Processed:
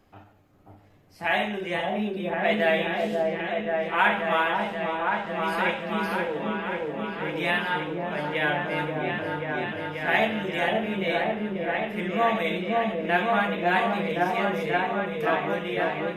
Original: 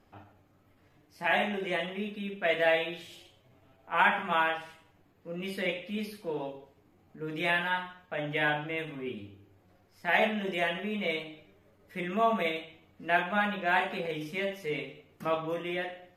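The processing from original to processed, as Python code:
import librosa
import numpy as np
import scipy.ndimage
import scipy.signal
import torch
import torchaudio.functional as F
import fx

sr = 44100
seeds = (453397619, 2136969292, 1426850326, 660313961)

y = fx.wow_flutter(x, sr, seeds[0], rate_hz=2.1, depth_cents=29.0)
y = fx.echo_opening(y, sr, ms=534, hz=750, octaves=1, feedback_pct=70, wet_db=0)
y = y * 10.0 ** (2.5 / 20.0)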